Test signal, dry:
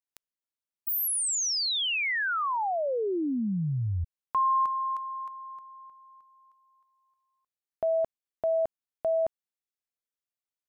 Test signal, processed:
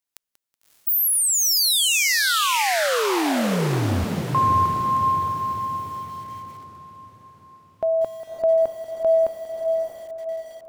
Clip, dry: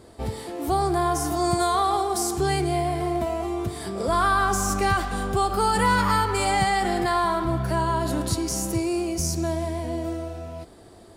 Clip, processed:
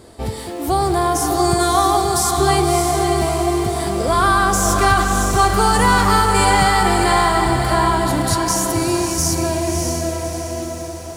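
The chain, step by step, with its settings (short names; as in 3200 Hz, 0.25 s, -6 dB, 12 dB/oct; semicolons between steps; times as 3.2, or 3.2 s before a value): high shelf 3100 Hz +3.5 dB; diffused feedback echo 0.607 s, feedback 48%, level -4 dB; lo-fi delay 0.187 s, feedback 35%, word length 7-bit, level -14 dB; gain +5 dB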